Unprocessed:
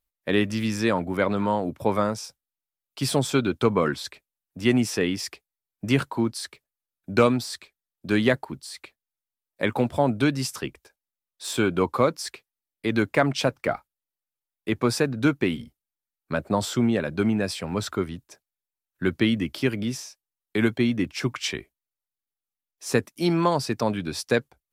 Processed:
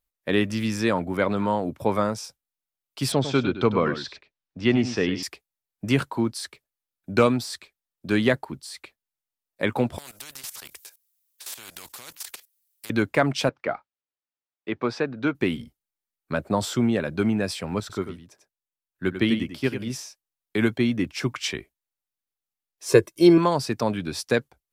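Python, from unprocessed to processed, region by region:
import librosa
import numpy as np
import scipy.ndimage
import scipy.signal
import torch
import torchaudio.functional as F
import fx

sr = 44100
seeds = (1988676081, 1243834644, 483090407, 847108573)

y = fx.chain(x, sr, fx.lowpass(hz=5400.0, slope=24),
    fx.echo_single(ms=100, db=-11.0), at=(3.12, 5.23))
y = fx.chain(y, sr, fx.pre_emphasis(coefficient=0.97),
    fx.level_steps(step_db=17),
    fx.spectral_comp(ratio=4.0), at=(9.98, 12.9))
y = fx.chain(y, sr, fx.highpass(hz=320.0, slope=6),
    fx.air_absorb(metres=200.0), at=(13.49, 15.35))
y = fx.chain(y, sr, fx.echo_single(ms=94, db=-6.5),
    fx.upward_expand(threshold_db=-30.0, expansion=1.5), at=(17.8, 19.9))
y = fx.chain(y, sr, fx.peak_eq(hz=330.0, db=12.5, octaves=0.55),
    fx.comb(ms=1.9, depth=0.87), at=(22.88, 23.38))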